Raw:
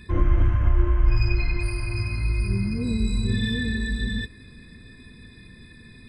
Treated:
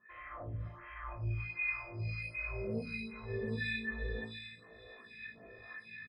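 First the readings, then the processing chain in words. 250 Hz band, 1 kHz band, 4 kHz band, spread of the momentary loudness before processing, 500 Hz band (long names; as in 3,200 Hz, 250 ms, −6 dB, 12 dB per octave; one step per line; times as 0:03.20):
−16.5 dB, −10.0 dB, −15.0 dB, 6 LU, −6.5 dB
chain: low-pass filter 5,800 Hz 12 dB per octave
comb filter 1.6 ms, depth 55%
healed spectral selection 0:02.10–0:02.87, 480–1,700 Hz after
automatic gain control gain up to 16 dB
tuned comb filter 56 Hz, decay 1.1 s, harmonics all, mix 90%
auto-filter band-pass sine 1.4 Hz 470–2,500 Hz
multiband delay without the direct sound lows, highs 590 ms, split 3,600 Hz
phaser with staggered stages 1.3 Hz
level +9 dB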